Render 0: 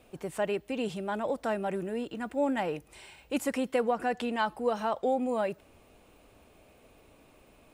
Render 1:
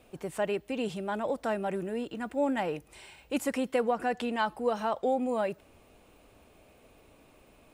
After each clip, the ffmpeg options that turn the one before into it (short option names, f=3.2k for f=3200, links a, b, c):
-af anull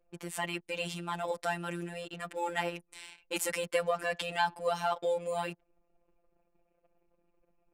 -af "afftfilt=real='hypot(re,im)*cos(PI*b)':imag='0':win_size=1024:overlap=0.75,anlmdn=0.000631,tiltshelf=f=1.3k:g=-6,volume=4dB"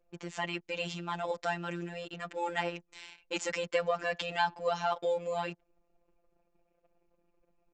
-af "aresample=16000,aresample=44100"